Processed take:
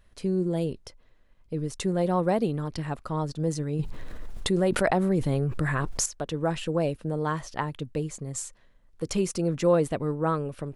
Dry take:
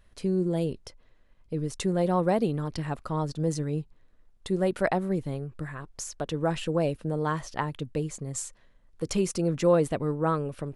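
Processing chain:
0:03.79–0:06.06: envelope flattener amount 70%

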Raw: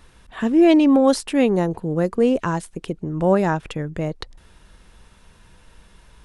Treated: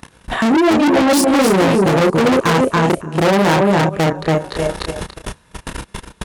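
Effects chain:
high-shelf EQ 5,300 Hz +10 dB
feedback echo with a high-pass in the loop 297 ms, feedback 35%, high-pass 310 Hz, level −9.5 dB
output level in coarse steps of 23 dB
double-tracking delay 31 ms −3.5 dB
on a send: single-tap delay 282 ms −7 dB
on the sum: automatic gain control gain up to 3.5 dB
high-shelf EQ 2,400 Hz −9.5 dB
transient designer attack +9 dB, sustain −9 dB
soft clipping −32 dBFS, distortion −1 dB
high-pass filter 150 Hz 6 dB per octave
boost into a limiter +32 dB
level −6 dB

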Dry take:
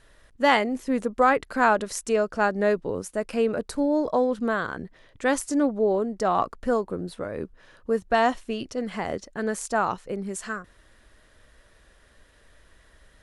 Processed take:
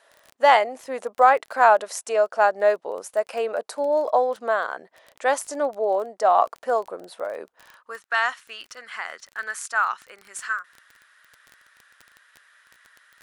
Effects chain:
high-pass filter sweep 670 Hz → 1,400 Hz, 0:07.50–0:08.01
surface crackle 18 per second −32 dBFS

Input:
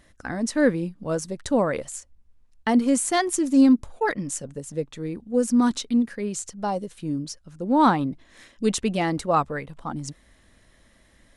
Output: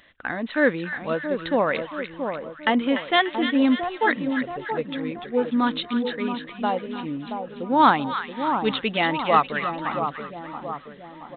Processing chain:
spectral tilt +3.5 dB per octave
echo with a time of its own for lows and highs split 1,200 Hz, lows 677 ms, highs 294 ms, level −7 dB
downsampling to 8,000 Hz
level +3.5 dB

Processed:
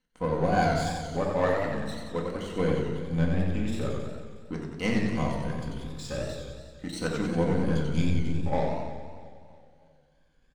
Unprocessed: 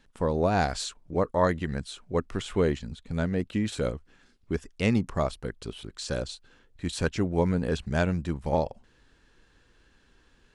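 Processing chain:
rippled gain that drifts along the octave scale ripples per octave 1.9, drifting +0.42 Hz, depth 12 dB
healed spectral selection 0:07.85–0:08.44, 380–2,100 Hz before
in parallel at −1.5 dB: downward compressor, threshold −35 dBFS, peak gain reduction 17 dB
on the sum: power curve on the samples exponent 1.4
repeating echo 319 ms, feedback 51%, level −19 dB
on a send at −1 dB: convolution reverb RT60 0.55 s, pre-delay 4 ms
on the sum: feedback echo with a swinging delay time 91 ms, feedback 66%, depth 130 cents, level −4.5 dB
level −5.5 dB

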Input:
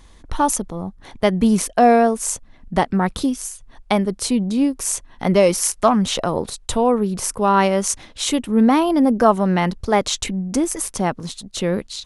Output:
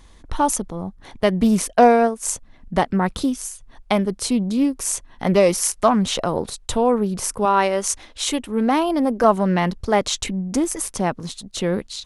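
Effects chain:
0:01.75–0:02.32: transient designer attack +5 dB, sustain −9 dB
0:07.45–0:09.24: parametric band 150 Hz −13.5 dB 0.98 octaves
highs frequency-modulated by the lows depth 0.16 ms
level −1 dB

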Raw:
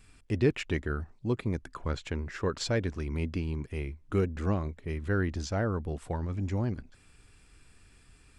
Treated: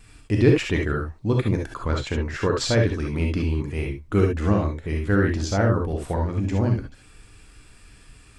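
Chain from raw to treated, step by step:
pitch vibrato 8.5 Hz 41 cents
reverb whose tail is shaped and stops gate 90 ms rising, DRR 1 dB
level +6.5 dB

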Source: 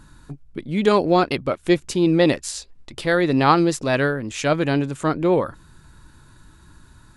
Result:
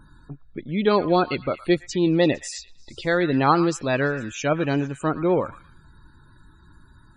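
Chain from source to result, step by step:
dynamic equaliser 5,400 Hz, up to +3 dB, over −39 dBFS, Q 1.1
spectral peaks only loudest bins 64
echo through a band-pass that steps 114 ms, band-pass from 1,400 Hz, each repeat 0.7 octaves, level −12 dB
level −2.5 dB

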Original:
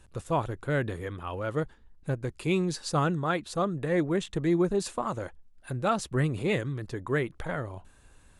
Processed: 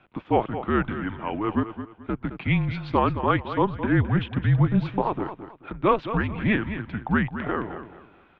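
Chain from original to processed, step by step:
repeating echo 216 ms, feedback 29%, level −11 dB
single-sideband voice off tune −210 Hz 290–3,300 Hz
level +7 dB

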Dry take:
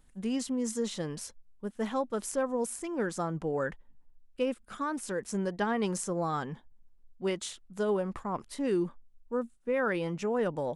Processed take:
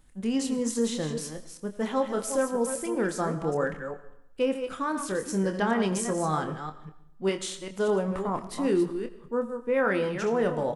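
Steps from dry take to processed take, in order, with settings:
delay that plays each chunk backwards 197 ms, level −8 dB
double-tracking delay 26 ms −8 dB
on a send: convolution reverb RT60 0.85 s, pre-delay 45 ms, DRR 13.5 dB
on the sum: level +3 dB

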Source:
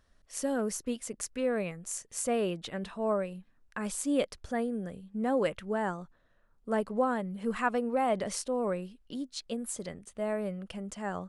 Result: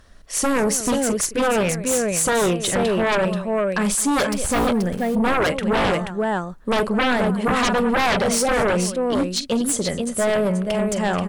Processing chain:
0:04.25–0:04.67: hold until the input has moved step −43.5 dBFS
multi-tap delay 44/214/482 ms −14/−19/−6.5 dB
sine wavefolder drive 13 dB, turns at −15.5 dBFS

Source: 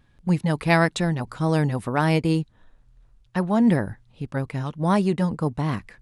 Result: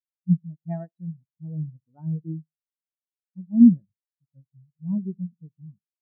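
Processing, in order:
repeating echo 70 ms, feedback 56%, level −15 dB
every bin expanded away from the loudest bin 4 to 1

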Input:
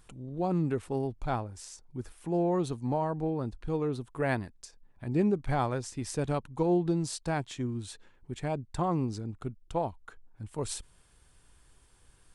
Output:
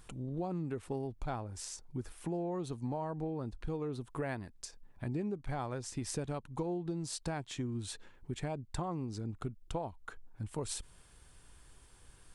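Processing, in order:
downward compressor 6 to 1, threshold −37 dBFS, peak gain reduction 14.5 dB
level +2.5 dB

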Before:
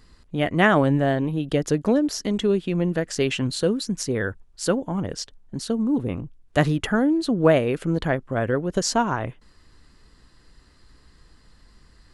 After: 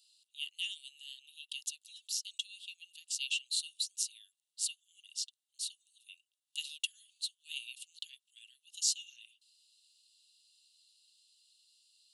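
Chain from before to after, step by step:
Chebyshev high-pass with heavy ripple 2,700 Hz, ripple 6 dB

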